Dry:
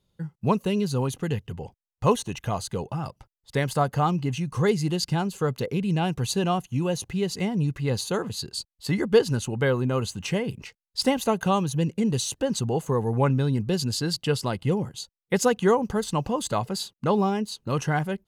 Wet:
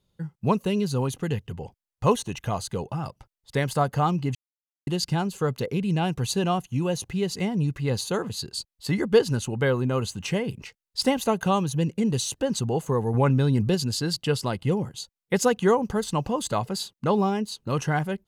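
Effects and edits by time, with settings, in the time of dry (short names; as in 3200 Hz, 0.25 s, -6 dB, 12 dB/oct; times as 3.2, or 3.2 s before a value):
4.35–4.87 mute
9.63–12.12 short-mantissa float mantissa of 8-bit
13.14–13.75 fast leveller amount 50%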